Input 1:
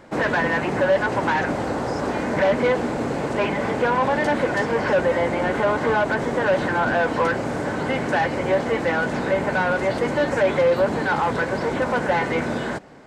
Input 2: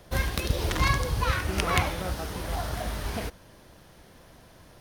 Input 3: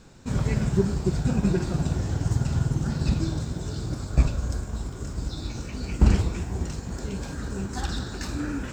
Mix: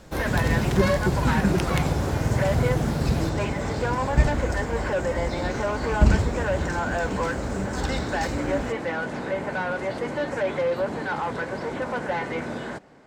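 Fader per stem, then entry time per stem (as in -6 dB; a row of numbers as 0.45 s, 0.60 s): -6.5 dB, -4.0 dB, +0.5 dB; 0.00 s, 0.00 s, 0.00 s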